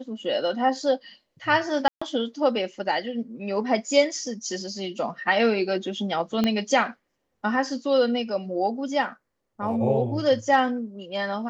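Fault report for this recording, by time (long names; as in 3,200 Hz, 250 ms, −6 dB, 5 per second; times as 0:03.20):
0:01.88–0:02.02: drop-out 135 ms
0:06.44: click −11 dBFS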